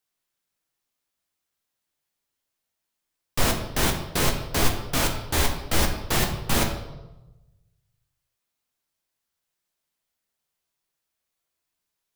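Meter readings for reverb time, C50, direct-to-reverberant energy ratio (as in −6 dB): 1.0 s, 7.5 dB, 2.0 dB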